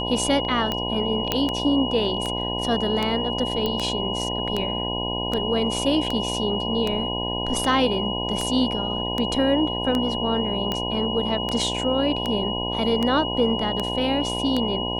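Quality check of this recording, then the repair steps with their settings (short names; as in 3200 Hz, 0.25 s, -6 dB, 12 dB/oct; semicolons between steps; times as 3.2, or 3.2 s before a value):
buzz 60 Hz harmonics 17 -29 dBFS
tick 78 rpm -11 dBFS
tone 2900 Hz -28 dBFS
1.32 pop -6 dBFS
3.66 pop -12 dBFS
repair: de-click; de-hum 60 Hz, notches 17; notch 2900 Hz, Q 30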